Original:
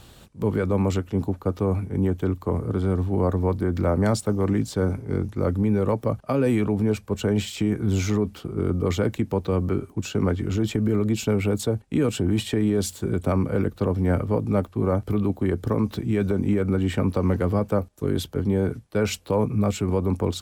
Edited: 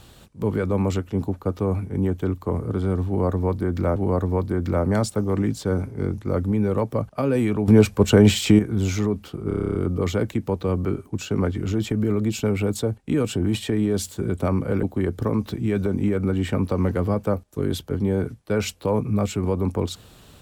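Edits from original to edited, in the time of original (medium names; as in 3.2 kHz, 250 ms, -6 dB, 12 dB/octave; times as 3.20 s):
3.07–3.96 s: loop, 2 plays
6.79–7.70 s: gain +9 dB
8.59 s: stutter 0.03 s, 10 plays
13.67–15.28 s: delete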